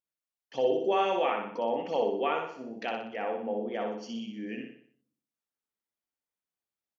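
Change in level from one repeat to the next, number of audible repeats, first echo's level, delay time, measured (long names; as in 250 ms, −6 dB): −6.5 dB, 5, −4.5 dB, 61 ms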